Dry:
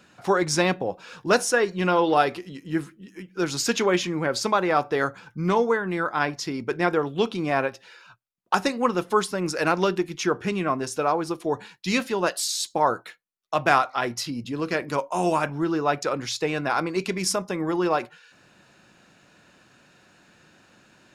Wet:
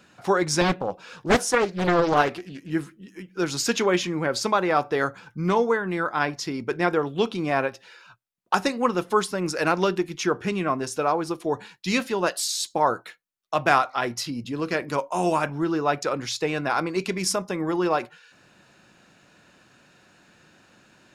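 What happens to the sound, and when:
0:00.61–0:02.70: highs frequency-modulated by the lows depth 0.75 ms

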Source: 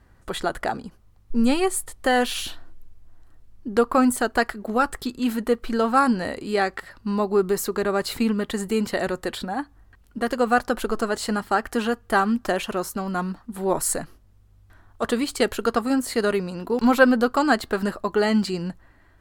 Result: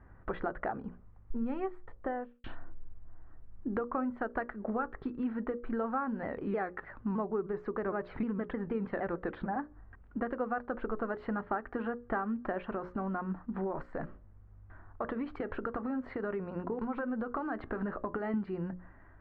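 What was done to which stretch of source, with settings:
0:01.58–0:02.44: fade out and dull
0:06.23–0:09.56: pitch modulation by a square or saw wave saw down 6.5 Hz, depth 160 cents
0:12.67–0:18.34: downward compressor, threshold −26 dBFS
whole clip: downward compressor 6 to 1, threshold −31 dBFS; low-pass filter 1,800 Hz 24 dB per octave; mains-hum notches 60/120/180/240/300/360/420/480/540/600 Hz

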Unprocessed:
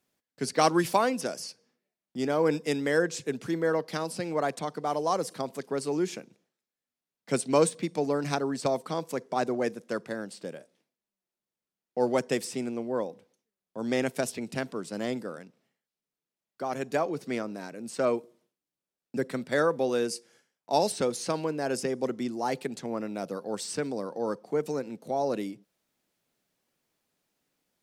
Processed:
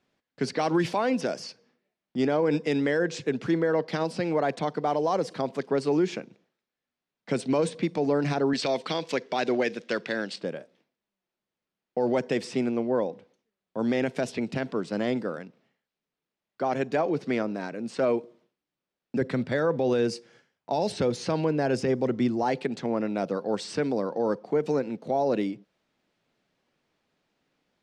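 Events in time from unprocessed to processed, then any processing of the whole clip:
0:08.53–0:10.36: meter weighting curve D
0:19.21–0:22.43: parametric band 92 Hz +10.5 dB 1.2 octaves
whole clip: low-pass filter 3,900 Hz 12 dB per octave; dynamic equaliser 1,200 Hz, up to −5 dB, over −45 dBFS, Q 3.5; brickwall limiter −22 dBFS; level +6 dB

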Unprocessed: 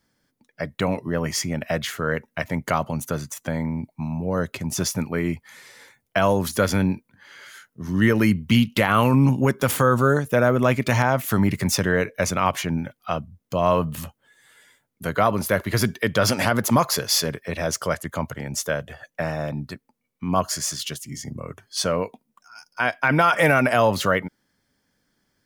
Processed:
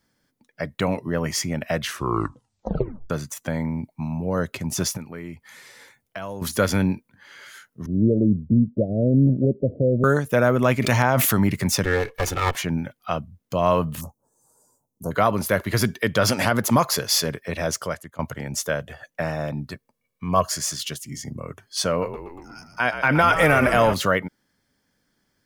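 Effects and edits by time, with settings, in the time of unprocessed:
0:01.79: tape stop 1.31 s
0:04.97–0:06.42: downward compressor 2 to 1, threshold −40 dBFS
0:07.86–0:10.04: Butterworth low-pass 640 Hz 96 dB per octave
0:10.78–0:11.33: level that may fall only so fast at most 22 dB per second
0:11.84–0:12.55: lower of the sound and its delayed copy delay 2.3 ms
0:14.01–0:15.11: elliptic band-stop filter 1,000–5,800 Hz, stop band 50 dB
0:17.70–0:18.19: fade out, to −21 dB
0:19.73–0:20.49: comb filter 1.8 ms, depth 52%
0:21.90–0:23.94: echo with shifted repeats 120 ms, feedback 64%, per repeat −57 Hz, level −10 dB

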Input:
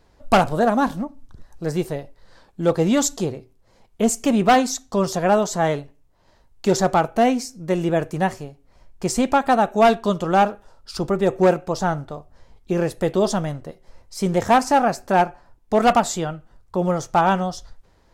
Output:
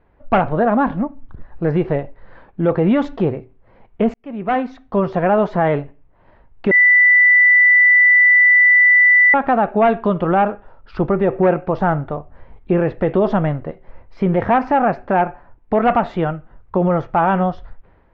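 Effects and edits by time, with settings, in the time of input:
0:04.14–0:05.63: fade in
0:06.71–0:09.34: beep over 1,980 Hz −13.5 dBFS
whole clip: inverse Chebyshev low-pass filter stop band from 9,400 Hz, stop band 70 dB; automatic gain control; brickwall limiter −7.5 dBFS

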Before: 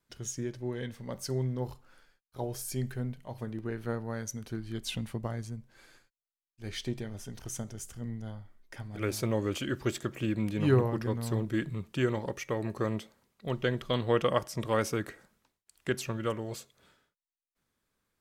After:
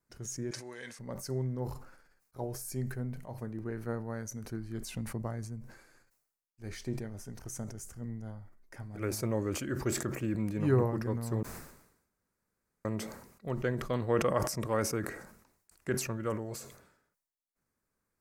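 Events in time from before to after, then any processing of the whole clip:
0:00.51–0:00.99: meter weighting curve ITU-R 468
0:11.43–0:12.85: fill with room tone
whole clip: parametric band 3,300 Hz −14 dB 0.67 octaves; level that may fall only so fast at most 73 dB per second; level −2.5 dB

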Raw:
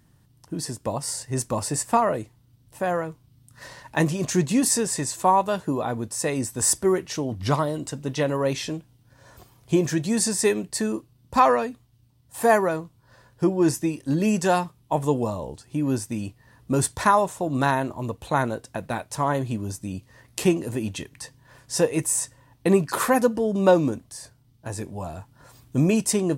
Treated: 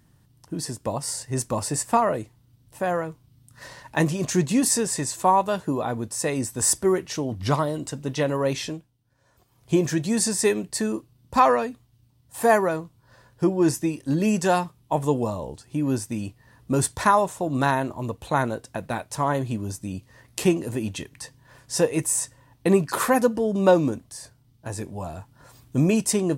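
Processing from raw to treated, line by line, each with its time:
0:08.65–0:09.73: duck −13 dB, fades 0.26 s

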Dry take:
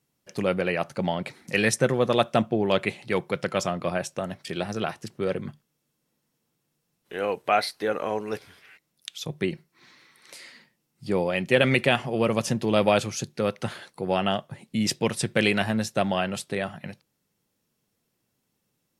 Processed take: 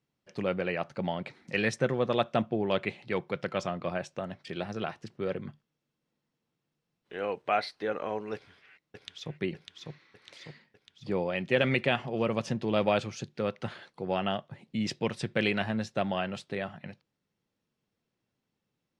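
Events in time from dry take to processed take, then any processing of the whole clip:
0:08.34–0:09.38: delay throw 600 ms, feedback 60%, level −4 dB
whole clip: low-pass filter 4,400 Hz 12 dB per octave; level −5.5 dB

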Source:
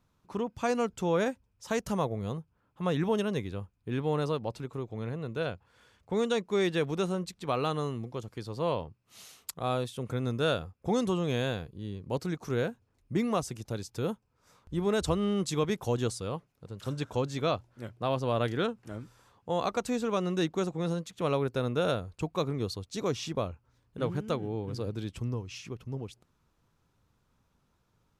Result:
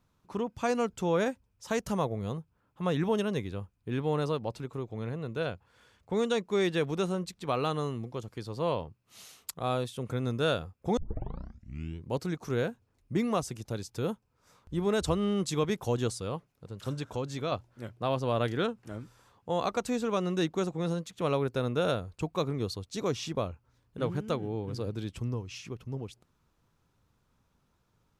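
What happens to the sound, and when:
0:10.97: tape start 1.14 s
0:16.98–0:17.52: downward compressor 1.5 to 1, threshold −35 dBFS

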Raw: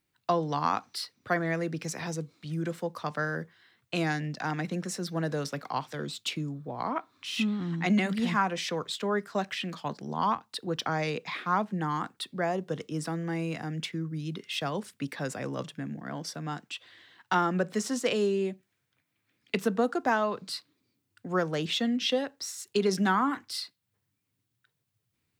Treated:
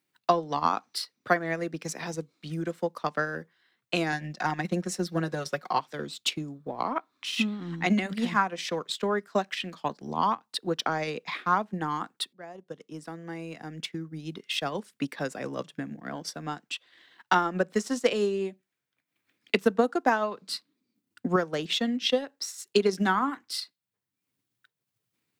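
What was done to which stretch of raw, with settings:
0:04.12–0:05.80: comb filter 5.5 ms
0:12.33–0:14.59: fade in, from −18.5 dB
0:20.51–0:21.36: parametric band 220 Hz +11 dB
whole clip: high-pass filter 180 Hz 12 dB per octave; transient designer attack +6 dB, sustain −7 dB

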